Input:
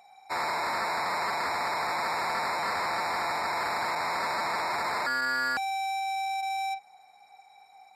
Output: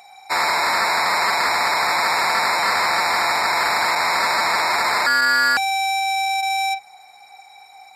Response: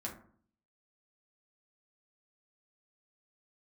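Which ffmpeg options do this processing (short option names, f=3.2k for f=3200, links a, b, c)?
-af "tiltshelf=f=1.2k:g=-4.5,acontrast=40,bandreject=f=50:t=h:w=6,bandreject=f=100:t=h:w=6,bandreject=f=150:t=h:w=6,volume=5dB"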